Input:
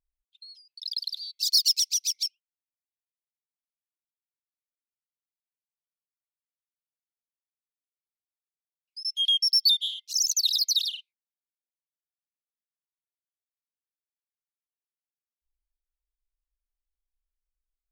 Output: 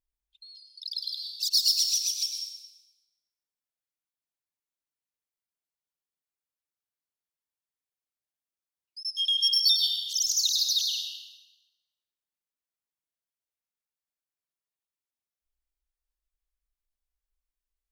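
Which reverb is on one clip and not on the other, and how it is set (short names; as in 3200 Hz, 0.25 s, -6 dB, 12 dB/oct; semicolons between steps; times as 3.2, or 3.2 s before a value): plate-style reverb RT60 1.3 s, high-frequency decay 0.75×, pre-delay 90 ms, DRR 1.5 dB; gain -2.5 dB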